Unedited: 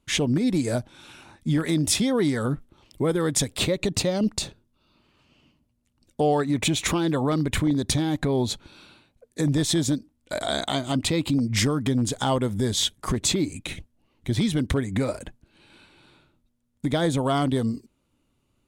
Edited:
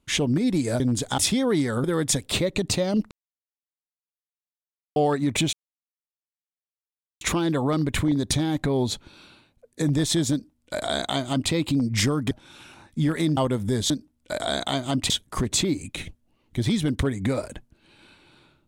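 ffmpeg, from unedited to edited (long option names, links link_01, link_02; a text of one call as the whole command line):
ffmpeg -i in.wav -filter_complex "[0:a]asplit=11[link_01][link_02][link_03][link_04][link_05][link_06][link_07][link_08][link_09][link_10][link_11];[link_01]atrim=end=0.802[link_12];[link_02]atrim=start=11.898:end=12.282[link_13];[link_03]atrim=start=1.858:end=2.522[link_14];[link_04]atrim=start=3.108:end=4.38,asetpts=PTS-STARTPTS,afade=type=out:start_time=1.268:duration=0.004:curve=hsin[link_15];[link_05]atrim=start=4.38:end=6.23,asetpts=PTS-STARTPTS,volume=0[link_16];[link_06]atrim=start=6.23:end=6.8,asetpts=PTS-STARTPTS,afade=type=in:duration=0.004:curve=hsin,afade=type=out:start_time=0.566:duration=0.004:curve=hsin,apad=pad_dur=1.68[link_17];[link_07]atrim=start=6.8:end=11.902,asetpts=PTS-STARTPTS,afade=type=in:duration=0.004:curve=hsin[link_18];[link_08]atrim=start=0.798:end=1.862[link_19];[link_09]atrim=start=12.278:end=12.812[link_20];[link_10]atrim=start=9.908:end=11.112[link_21];[link_11]atrim=start=12.808[link_22];[link_12][link_13]acrossfade=duration=0.004:curve1=hsin:curve2=hsin[link_23];[link_23][link_14]acrossfade=duration=0.004:curve1=hsin:curve2=hsin[link_24];[link_15][link_16][link_17][link_18]concat=n=4:v=0:a=1[link_25];[link_24][link_25]acrossfade=duration=0.004:curve1=hsin:curve2=hsin[link_26];[link_26][link_19]acrossfade=duration=0.004:curve1=hsin:curve2=hsin[link_27];[link_27][link_20]acrossfade=duration=0.004:curve1=hsin:curve2=hsin[link_28];[link_28][link_21]acrossfade=duration=0.004:curve1=hsin:curve2=hsin[link_29];[link_29][link_22]acrossfade=duration=0.004:curve1=hsin:curve2=hsin" out.wav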